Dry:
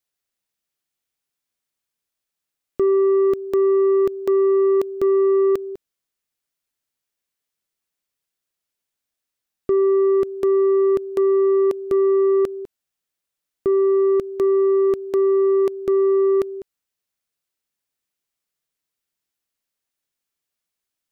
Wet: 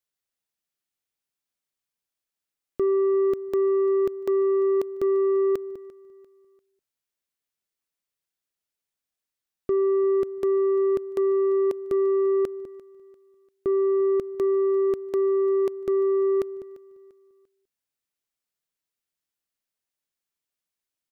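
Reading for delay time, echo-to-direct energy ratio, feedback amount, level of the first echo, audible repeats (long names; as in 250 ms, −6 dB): 345 ms, −20.5 dB, 37%, −21.0 dB, 2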